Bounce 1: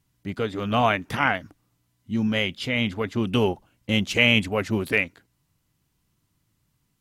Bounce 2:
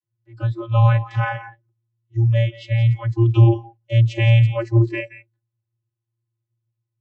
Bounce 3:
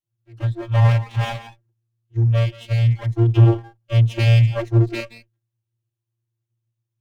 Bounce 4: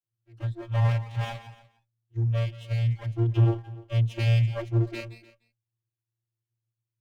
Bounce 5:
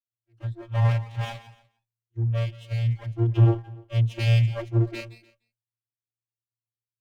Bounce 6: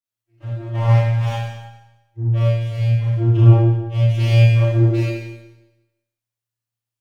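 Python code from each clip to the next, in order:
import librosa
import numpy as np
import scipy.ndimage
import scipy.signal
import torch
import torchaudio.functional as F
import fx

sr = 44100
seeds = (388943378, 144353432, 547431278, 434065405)

y1 = x + 10.0 ** (-12.5 / 20.0) * np.pad(x, (int(173 * sr / 1000.0), 0))[:len(x)]
y1 = fx.vocoder(y1, sr, bands=32, carrier='square', carrier_hz=115.0)
y1 = fx.noise_reduce_blind(y1, sr, reduce_db=18)
y1 = y1 * librosa.db_to_amplitude(8.0)
y2 = fx.lower_of_two(y1, sr, delay_ms=0.31)
y3 = y2 + 10.0 ** (-20.0 / 20.0) * np.pad(y2, (int(297 * sr / 1000.0), 0))[:len(y2)]
y3 = y3 * librosa.db_to_amplitude(-8.5)
y4 = fx.band_widen(y3, sr, depth_pct=40)
y4 = y4 * librosa.db_to_amplitude(1.0)
y5 = fx.rev_schroeder(y4, sr, rt60_s=1.0, comb_ms=26, drr_db=-7.5)
y5 = y5 * librosa.db_to_amplitude(-1.5)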